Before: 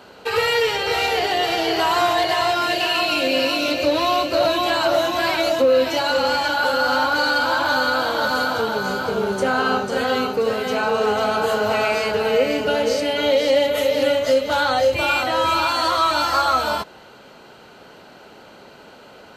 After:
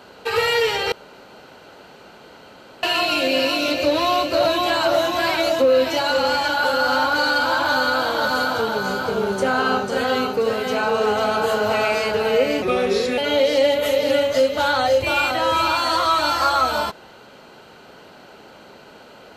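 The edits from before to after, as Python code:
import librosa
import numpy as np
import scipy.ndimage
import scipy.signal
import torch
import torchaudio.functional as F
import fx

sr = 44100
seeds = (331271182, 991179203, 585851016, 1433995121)

y = fx.edit(x, sr, fx.room_tone_fill(start_s=0.92, length_s=1.91),
    fx.speed_span(start_s=12.62, length_s=0.48, speed=0.86), tone=tone)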